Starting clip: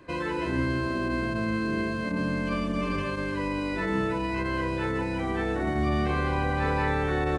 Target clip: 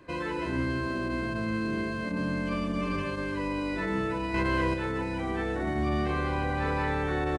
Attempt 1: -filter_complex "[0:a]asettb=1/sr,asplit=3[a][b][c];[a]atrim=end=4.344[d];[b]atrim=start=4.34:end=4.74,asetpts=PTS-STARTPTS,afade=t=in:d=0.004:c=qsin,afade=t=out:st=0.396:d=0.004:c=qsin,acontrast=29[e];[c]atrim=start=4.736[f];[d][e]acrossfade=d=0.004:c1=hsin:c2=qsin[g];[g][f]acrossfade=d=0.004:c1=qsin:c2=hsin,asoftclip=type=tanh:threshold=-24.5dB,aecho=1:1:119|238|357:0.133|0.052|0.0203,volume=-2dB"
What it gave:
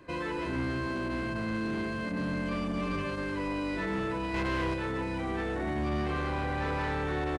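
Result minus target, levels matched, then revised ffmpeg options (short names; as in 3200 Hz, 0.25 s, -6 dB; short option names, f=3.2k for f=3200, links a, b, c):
soft clip: distortion +13 dB
-filter_complex "[0:a]asettb=1/sr,asplit=3[a][b][c];[a]atrim=end=4.344[d];[b]atrim=start=4.34:end=4.74,asetpts=PTS-STARTPTS,afade=t=in:d=0.004:c=qsin,afade=t=out:st=0.396:d=0.004:c=qsin,acontrast=29[e];[c]atrim=start=4.736[f];[d][e]acrossfade=d=0.004:c1=hsin:c2=qsin[g];[g][f]acrossfade=d=0.004:c1=qsin:c2=hsin,asoftclip=type=tanh:threshold=-15dB,aecho=1:1:119|238|357:0.133|0.052|0.0203,volume=-2dB"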